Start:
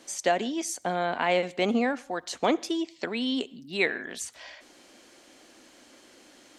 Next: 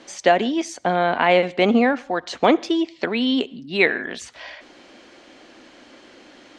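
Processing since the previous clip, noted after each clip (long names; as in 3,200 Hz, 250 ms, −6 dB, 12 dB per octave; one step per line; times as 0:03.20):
low-pass filter 3,900 Hz 12 dB per octave
level +8.5 dB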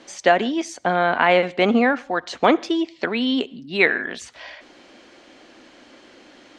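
dynamic equaliser 1,400 Hz, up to +5 dB, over −32 dBFS, Q 1.5
level −1 dB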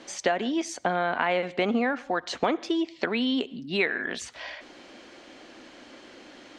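downward compressor 3 to 1, threshold −24 dBFS, peak gain reduction 11 dB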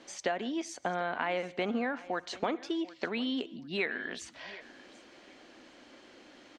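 repeating echo 743 ms, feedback 22%, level −19.5 dB
level −7 dB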